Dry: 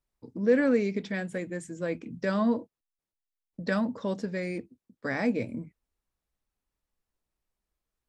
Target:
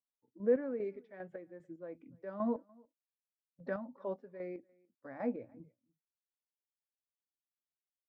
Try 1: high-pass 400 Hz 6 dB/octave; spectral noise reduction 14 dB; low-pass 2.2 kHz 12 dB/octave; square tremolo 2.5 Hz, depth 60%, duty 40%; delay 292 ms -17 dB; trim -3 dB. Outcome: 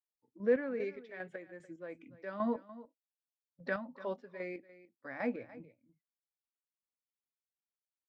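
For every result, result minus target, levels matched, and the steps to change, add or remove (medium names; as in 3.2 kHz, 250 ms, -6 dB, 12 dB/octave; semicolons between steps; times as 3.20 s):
2 kHz band +9.0 dB; echo-to-direct +10.5 dB
change: low-pass 940 Hz 12 dB/octave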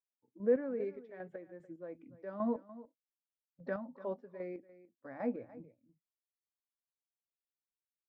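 echo-to-direct +10.5 dB
change: delay 292 ms -27.5 dB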